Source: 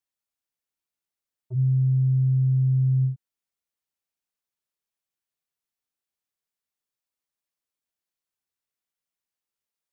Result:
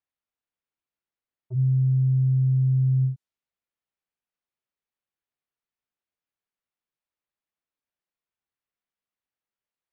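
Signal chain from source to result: low-pass opened by the level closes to 2900 Hz

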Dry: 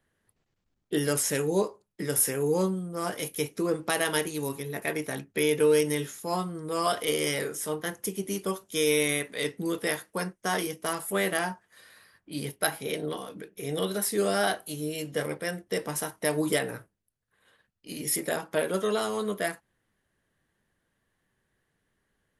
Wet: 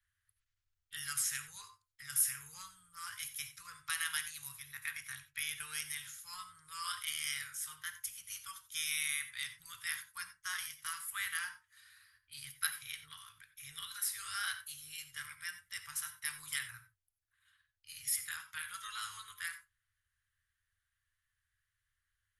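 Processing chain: elliptic band-stop 100–1300 Hz, stop band 40 dB; bell 470 Hz -3.5 dB 2.6 oct; non-linear reverb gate 0.11 s rising, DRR 11.5 dB; gain -6 dB

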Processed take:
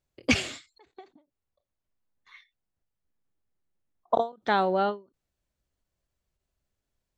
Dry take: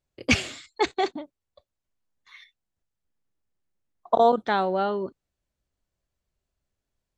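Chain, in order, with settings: 0.82–4.14 high shelf 3100 Hz -8 dB; ending taper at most 210 dB/s

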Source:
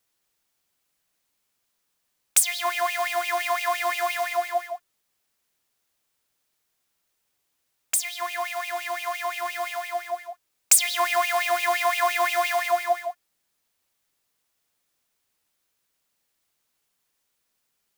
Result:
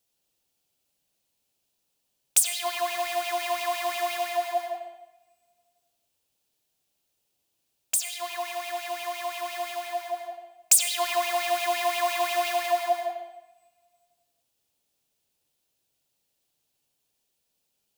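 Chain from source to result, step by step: band shelf 1500 Hz -8.5 dB 1.3 oct; on a send: reverb RT60 0.85 s, pre-delay 77 ms, DRR 3 dB; on the sum: gain -1.5 dB

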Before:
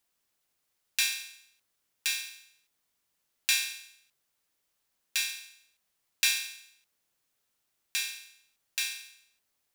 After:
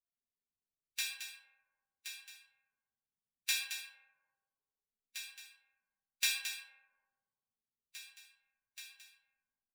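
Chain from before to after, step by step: per-bin expansion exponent 3; echo 0.22 s -9 dB; reverb RT60 1.7 s, pre-delay 4 ms, DRR 0.5 dB; gain -4.5 dB

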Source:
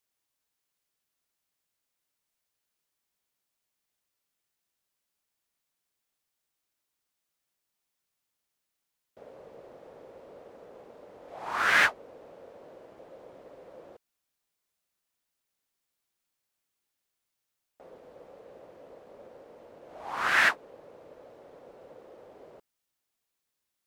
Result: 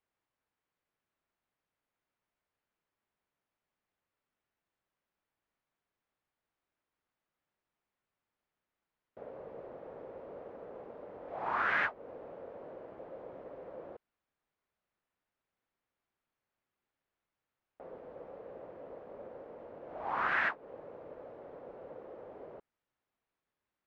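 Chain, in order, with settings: LPF 1900 Hz 12 dB/oct; compressor 3:1, threshold -33 dBFS, peak gain reduction 10 dB; gain +2.5 dB

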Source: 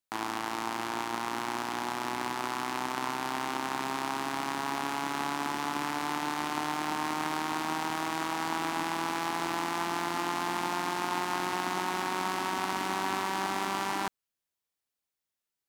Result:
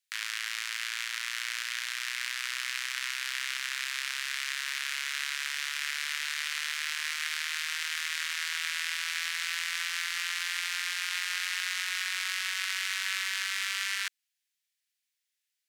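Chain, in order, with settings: steep high-pass 1700 Hz 36 dB/oct; high shelf 11000 Hz -7.5 dB; gain +7.5 dB

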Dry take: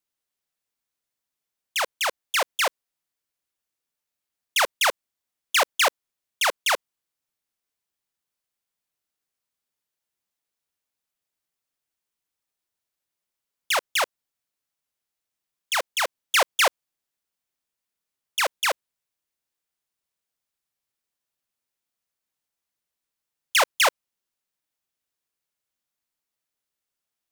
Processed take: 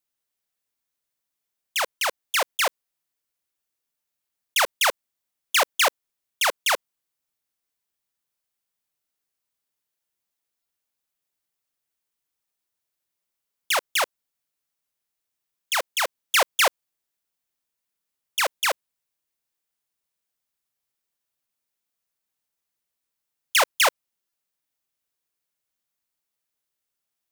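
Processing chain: 2.48–4.69 block floating point 7-bit; high shelf 11000 Hz +4.5 dB; stuck buffer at 1.98/10.62/24.29, samples 128, times 10

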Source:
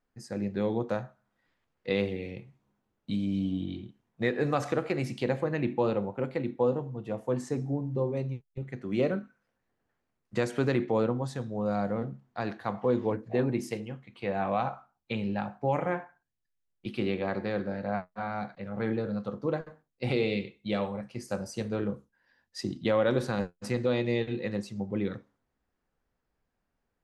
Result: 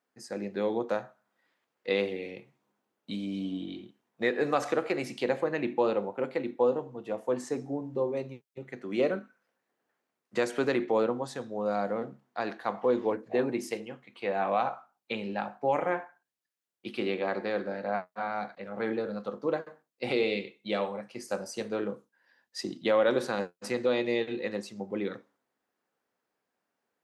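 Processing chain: HPF 300 Hz 12 dB/oct; gain +2 dB

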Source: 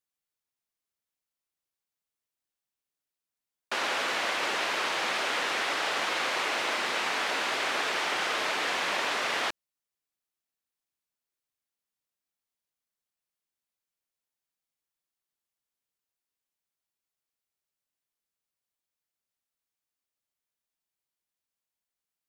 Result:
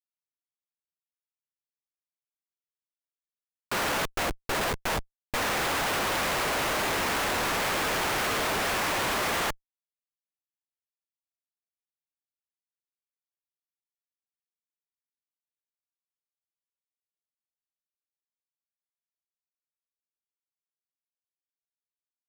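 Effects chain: 4.05–5.34 gate with hold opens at -18 dBFS; Schmitt trigger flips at -33 dBFS; gain +8.5 dB

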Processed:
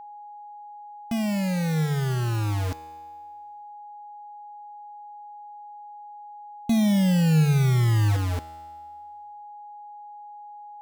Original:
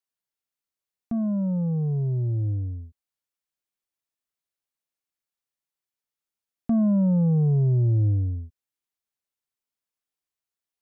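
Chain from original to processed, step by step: bit-crush 5-bit; whine 830 Hz -39 dBFS; resonator 79 Hz, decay 1.6 s, harmonics all, mix 60%; gain +7 dB

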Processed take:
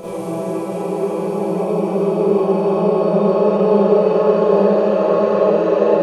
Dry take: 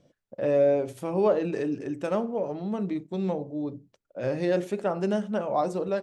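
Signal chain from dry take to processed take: Paulstretch 19×, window 0.50 s, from 1.03; Schroeder reverb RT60 0.88 s, combs from 31 ms, DRR -9 dB; gain -1 dB

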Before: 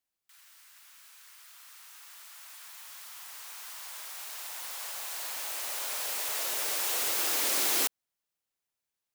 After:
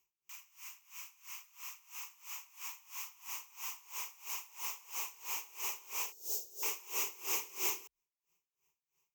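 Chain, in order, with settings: 6.12–6.63 Chebyshev band-stop 650–4100 Hz, order 3; compressor 2:1, threshold -51 dBFS, peak gain reduction 14.5 dB; ripple EQ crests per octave 0.75, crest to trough 16 dB; dB-linear tremolo 3 Hz, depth 23 dB; gain +6.5 dB

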